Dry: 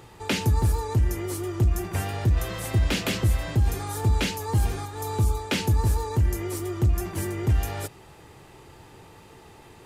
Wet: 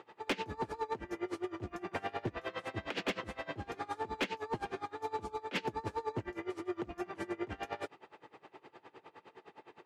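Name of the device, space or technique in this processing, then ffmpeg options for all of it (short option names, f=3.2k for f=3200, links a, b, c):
helicopter radio: -af "highpass=330,lowpass=2.7k,aeval=exprs='val(0)*pow(10,-23*(0.5-0.5*cos(2*PI*9.7*n/s))/20)':c=same,asoftclip=type=hard:threshold=-28dB,volume=1dB"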